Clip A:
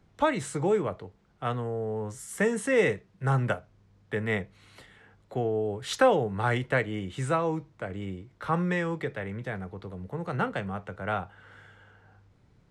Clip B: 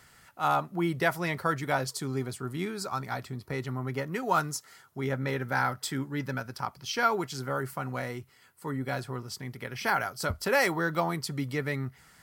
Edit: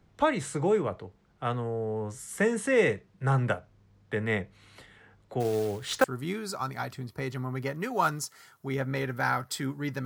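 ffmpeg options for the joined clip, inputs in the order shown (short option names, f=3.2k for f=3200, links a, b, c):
-filter_complex "[0:a]asettb=1/sr,asplit=3[a][b][c];[a]atrim=end=5.404[d];[b]atrim=start=5.4:end=6.04,asetpts=PTS-STARTPTS,afade=t=in:d=0.004:c=qsin,afade=t=out:st=0.636:d=0.004:c=qsin,acrusher=bits=4:mode=log:mix=0:aa=0.000001[e];[c]atrim=start=6.036[f];[d][e]acrossfade=d=0.004:c1=hsin:c2=qsin[g];[g][f]acrossfade=d=0.004:c1=qsin:c2=hsin,apad=whole_dur=10.05,atrim=end=10.05,atrim=end=6.042[h];[1:a]atrim=start=2.358:end=6.37[i];[h][i]acrossfade=d=0.004:c1=hsin:c2=hsin"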